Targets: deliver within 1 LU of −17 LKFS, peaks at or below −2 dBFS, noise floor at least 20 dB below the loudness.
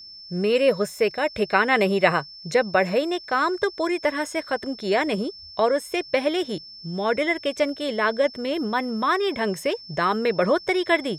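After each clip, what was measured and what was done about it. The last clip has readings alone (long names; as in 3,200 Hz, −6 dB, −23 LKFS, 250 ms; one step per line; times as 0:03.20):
interfering tone 5,300 Hz; level of the tone −40 dBFS; integrated loudness −23.5 LKFS; sample peak −3.5 dBFS; target loudness −17.0 LKFS
→ notch filter 5,300 Hz, Q 30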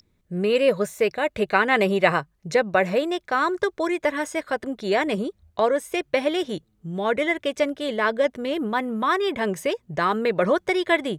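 interfering tone none found; integrated loudness −23.5 LKFS; sample peak −3.5 dBFS; target loudness −17.0 LKFS
→ level +6.5 dB
brickwall limiter −2 dBFS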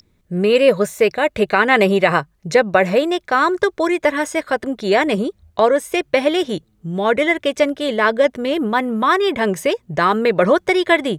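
integrated loudness −17.0 LKFS; sample peak −2.0 dBFS; background noise floor −60 dBFS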